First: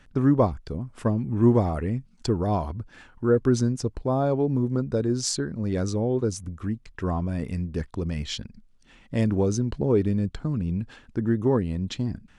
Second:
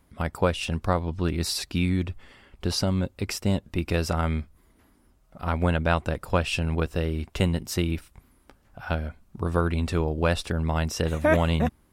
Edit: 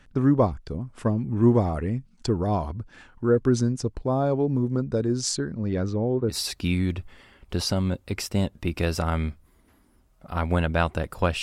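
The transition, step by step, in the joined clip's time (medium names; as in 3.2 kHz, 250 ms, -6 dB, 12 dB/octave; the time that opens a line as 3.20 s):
first
5.54–6.37 s: low-pass 5.8 kHz -> 1.3 kHz
6.32 s: go over to second from 1.43 s, crossfade 0.10 s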